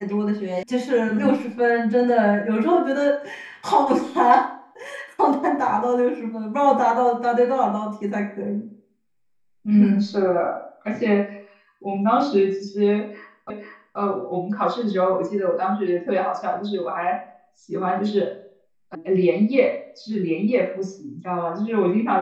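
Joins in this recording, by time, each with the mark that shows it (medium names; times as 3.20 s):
0.63 s: sound stops dead
13.50 s: repeat of the last 0.48 s
18.95 s: sound stops dead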